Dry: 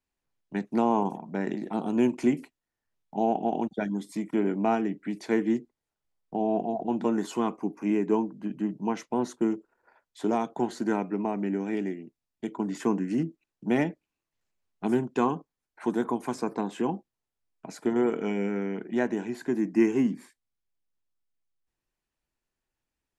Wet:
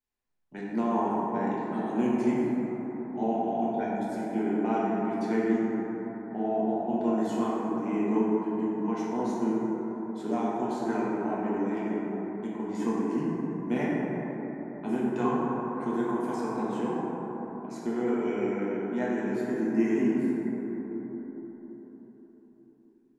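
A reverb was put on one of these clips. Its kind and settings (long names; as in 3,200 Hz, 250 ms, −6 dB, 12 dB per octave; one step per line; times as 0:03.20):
dense smooth reverb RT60 4.7 s, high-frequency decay 0.25×, DRR −7.5 dB
level −9 dB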